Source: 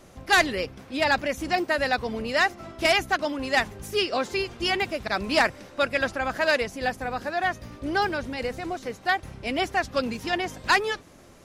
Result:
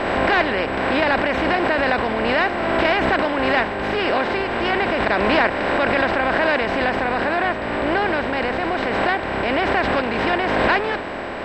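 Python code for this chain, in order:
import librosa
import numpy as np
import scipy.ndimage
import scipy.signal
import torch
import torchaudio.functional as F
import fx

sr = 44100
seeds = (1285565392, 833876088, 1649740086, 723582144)

y = fx.bin_compress(x, sr, power=0.4)
y = fx.high_shelf(y, sr, hz=9600.0, db=-10.0, at=(7.21, 8.07))
y = y + 10.0 ** (-32.0 / 20.0) * np.sin(2.0 * np.pi * 7800.0 * np.arange(len(y)) / sr)
y = fx.air_absorb(y, sr, metres=350.0)
y = fx.pre_swell(y, sr, db_per_s=23.0)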